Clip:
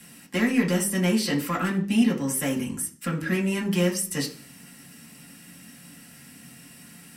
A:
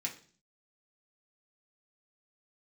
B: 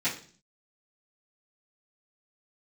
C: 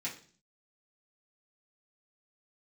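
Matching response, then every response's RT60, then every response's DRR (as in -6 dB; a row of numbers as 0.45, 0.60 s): A; 0.45, 0.45, 0.45 s; -2.0, -14.0, -7.5 dB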